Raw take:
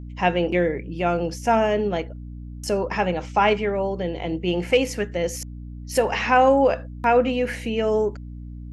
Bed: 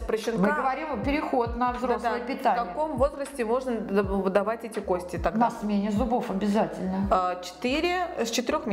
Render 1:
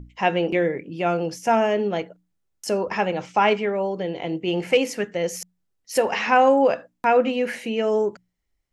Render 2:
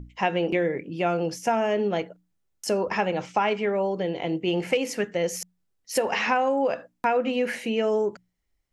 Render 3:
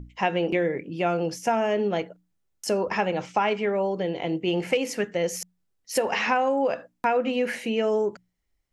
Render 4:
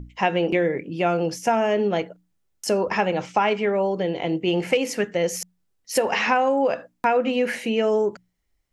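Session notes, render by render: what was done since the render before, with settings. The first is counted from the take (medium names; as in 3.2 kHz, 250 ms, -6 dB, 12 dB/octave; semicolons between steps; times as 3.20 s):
hum notches 60/120/180/240/300 Hz
compression 10:1, threshold -19 dBFS, peak gain reduction 8 dB
no audible change
trim +3 dB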